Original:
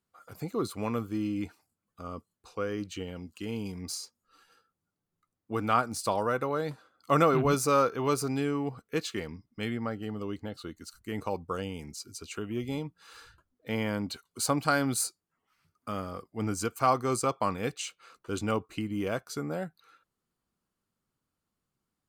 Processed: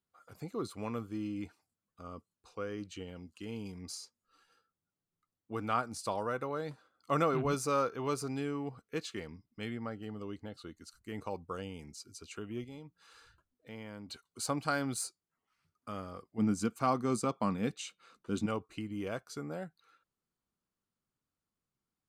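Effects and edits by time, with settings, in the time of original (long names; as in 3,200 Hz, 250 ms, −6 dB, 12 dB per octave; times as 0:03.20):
0:12.64–0:14.09: downward compressor 1.5 to 1, threshold −51 dBFS
0:16.38–0:18.46: hollow resonant body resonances 210/3,700 Hz, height 12 dB, ringing for 35 ms
whole clip: low-pass filter 11,000 Hz 12 dB per octave; level −6.5 dB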